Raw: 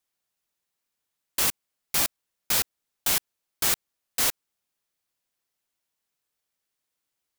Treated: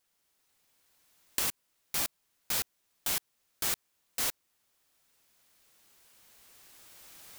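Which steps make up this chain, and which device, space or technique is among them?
cheap recorder with automatic gain (white noise bed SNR 38 dB; camcorder AGC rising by 8.8 dB per second)
level −7.5 dB

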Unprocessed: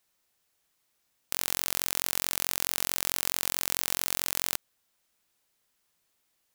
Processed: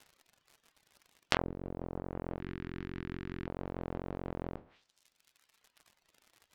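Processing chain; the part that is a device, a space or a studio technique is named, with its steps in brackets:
peak hold with a decay on every bin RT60 0.42 s
lo-fi chain (low-pass filter 3,900 Hz 12 dB per octave; tape wow and flutter; surface crackle 99 per second −53 dBFS)
treble cut that deepens with the level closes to 460 Hz, closed at −38.5 dBFS
reverb reduction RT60 1.8 s
0:02.40–0:03.47: drawn EQ curve 370 Hz 0 dB, 550 Hz −24 dB, 1,700 Hz +7 dB
level +9 dB

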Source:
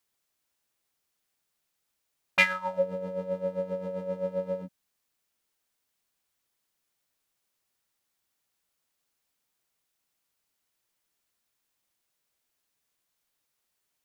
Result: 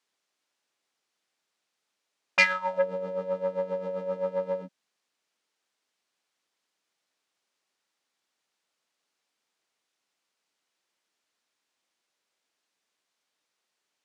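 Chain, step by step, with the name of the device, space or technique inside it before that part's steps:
public-address speaker with an overloaded transformer (saturating transformer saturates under 2,100 Hz; band-pass filter 240–6,400 Hz)
level +3 dB

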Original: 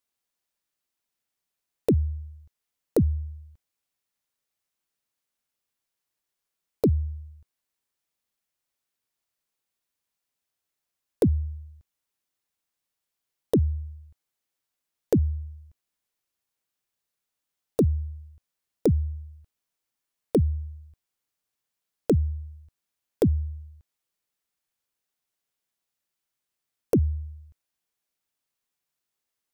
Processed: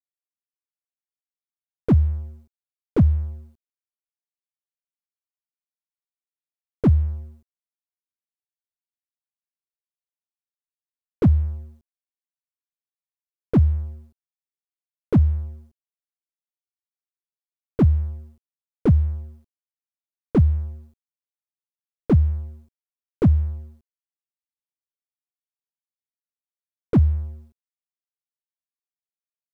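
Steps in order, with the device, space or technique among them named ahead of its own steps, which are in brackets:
early transistor amplifier (dead-zone distortion −51.5 dBFS; slew-rate limiting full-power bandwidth 24 Hz)
level +7.5 dB

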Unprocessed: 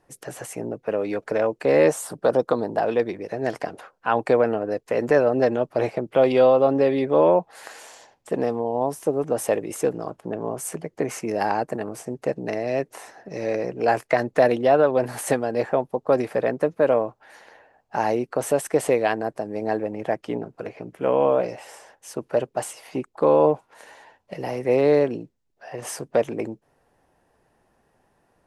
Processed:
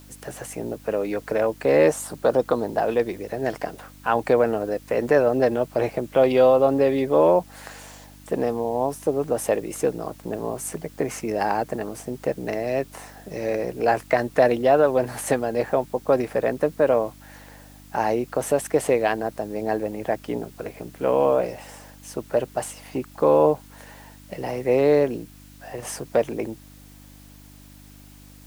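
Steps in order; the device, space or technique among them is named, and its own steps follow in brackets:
video cassette with head-switching buzz (hum with harmonics 50 Hz, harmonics 6, −48 dBFS −3 dB per octave; white noise bed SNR 30 dB)

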